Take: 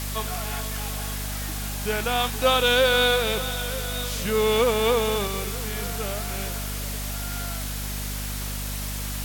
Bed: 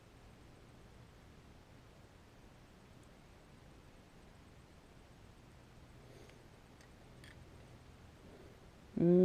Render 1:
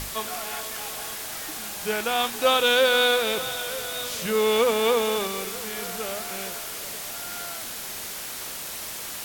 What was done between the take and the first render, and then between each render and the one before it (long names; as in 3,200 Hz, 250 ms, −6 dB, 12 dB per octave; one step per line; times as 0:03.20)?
mains-hum notches 50/100/150/200/250 Hz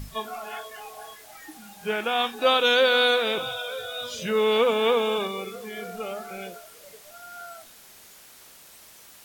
noise reduction from a noise print 15 dB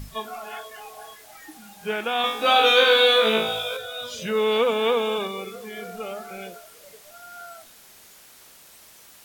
0:02.22–0:03.77: flutter between parallel walls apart 3.1 metres, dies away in 0.55 s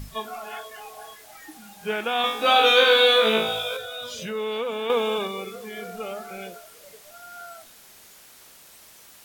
0:03.81–0:04.90: downward compressor 2 to 1, threshold −31 dBFS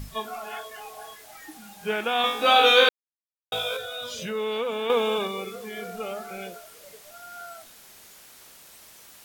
0:02.89–0:03.52: silence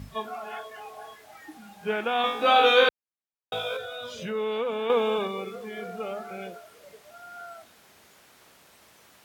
high-pass filter 63 Hz
high-shelf EQ 3,900 Hz −12 dB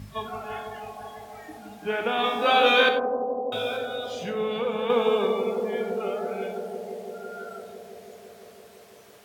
bucket-brigade delay 167 ms, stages 1,024, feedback 85%, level −5 dB
reverb whose tail is shaped and stops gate 120 ms flat, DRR 6.5 dB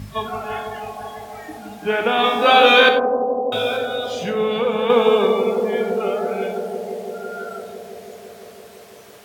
level +7.5 dB
brickwall limiter −1 dBFS, peak gain reduction 1.5 dB